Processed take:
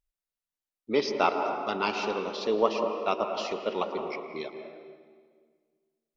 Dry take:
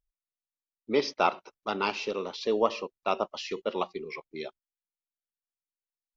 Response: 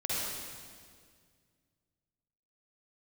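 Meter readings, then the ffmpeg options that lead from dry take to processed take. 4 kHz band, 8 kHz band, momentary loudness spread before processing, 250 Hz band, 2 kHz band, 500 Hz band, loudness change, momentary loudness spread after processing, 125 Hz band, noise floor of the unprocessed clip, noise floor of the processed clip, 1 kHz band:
+0.5 dB, n/a, 12 LU, +1.5 dB, +1.0 dB, +2.0 dB, +1.5 dB, 12 LU, +1.0 dB, under -85 dBFS, under -85 dBFS, +1.5 dB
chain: -filter_complex "[0:a]asplit=2[a][b];[b]acrossover=split=170 2500:gain=0.2 1 0.224[c][d][e];[c][d][e]amix=inputs=3:normalize=0[f];[1:a]atrim=start_sample=2205,asetrate=52920,aresample=44100,adelay=112[g];[f][g]afir=irnorm=-1:irlink=0,volume=-8.5dB[h];[a][h]amix=inputs=2:normalize=0"

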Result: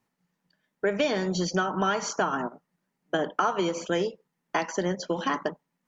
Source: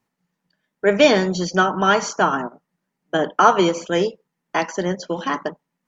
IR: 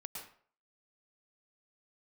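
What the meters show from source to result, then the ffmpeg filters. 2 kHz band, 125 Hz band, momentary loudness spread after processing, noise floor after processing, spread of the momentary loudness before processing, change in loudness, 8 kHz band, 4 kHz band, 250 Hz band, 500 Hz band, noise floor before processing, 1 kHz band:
-9.0 dB, -6.5 dB, 6 LU, -81 dBFS, 11 LU, -9.0 dB, n/a, -8.5 dB, -7.5 dB, -9.0 dB, -79 dBFS, -9.5 dB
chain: -af "acompressor=threshold=-21dB:ratio=6,volume=-1.5dB"

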